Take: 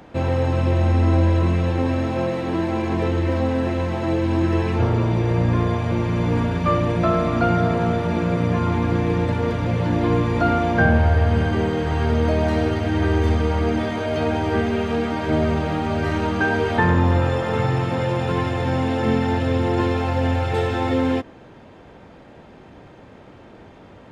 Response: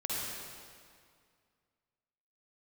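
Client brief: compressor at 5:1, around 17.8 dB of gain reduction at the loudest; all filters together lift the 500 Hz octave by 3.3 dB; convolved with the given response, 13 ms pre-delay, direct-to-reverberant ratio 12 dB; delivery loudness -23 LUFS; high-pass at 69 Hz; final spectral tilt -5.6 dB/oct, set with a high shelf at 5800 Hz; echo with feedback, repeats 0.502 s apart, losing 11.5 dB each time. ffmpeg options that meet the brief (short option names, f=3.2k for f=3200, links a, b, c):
-filter_complex "[0:a]highpass=69,equalizer=f=500:t=o:g=4,highshelf=f=5.8k:g=-3.5,acompressor=threshold=-34dB:ratio=5,aecho=1:1:502|1004|1506:0.266|0.0718|0.0194,asplit=2[a][b];[1:a]atrim=start_sample=2205,adelay=13[c];[b][c]afir=irnorm=-1:irlink=0,volume=-17dB[d];[a][d]amix=inputs=2:normalize=0,volume=12dB"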